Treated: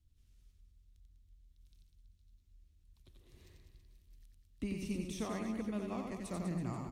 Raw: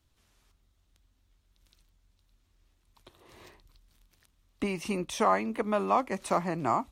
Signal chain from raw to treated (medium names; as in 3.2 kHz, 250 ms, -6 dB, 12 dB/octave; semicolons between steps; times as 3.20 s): amplifier tone stack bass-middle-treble 10-0-1; reverse bouncing-ball echo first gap 90 ms, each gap 1.2×, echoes 5; trim +10 dB